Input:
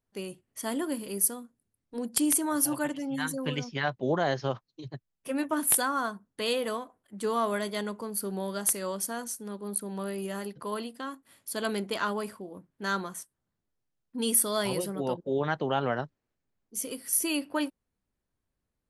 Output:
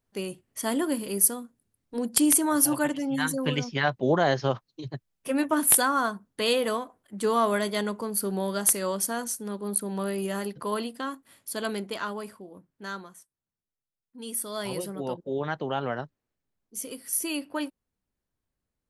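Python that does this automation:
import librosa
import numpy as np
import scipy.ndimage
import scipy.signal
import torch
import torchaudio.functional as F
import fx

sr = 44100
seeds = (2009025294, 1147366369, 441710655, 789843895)

y = fx.gain(x, sr, db=fx.line((11.05, 4.5), (12.1, -3.0), (12.72, -3.0), (13.2, -11.0), (14.17, -11.0), (14.77, -1.5)))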